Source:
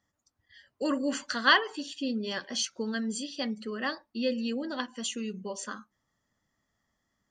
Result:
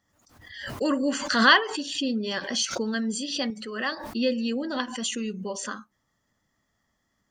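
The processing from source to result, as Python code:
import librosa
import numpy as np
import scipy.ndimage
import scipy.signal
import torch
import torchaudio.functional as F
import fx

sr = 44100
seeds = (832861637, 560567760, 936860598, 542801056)

y = fx.low_shelf(x, sr, hz=370.0, db=-9.5, at=(3.5, 3.92))
y = fx.pre_swell(y, sr, db_per_s=64.0)
y = F.gain(torch.from_numpy(y), 4.0).numpy()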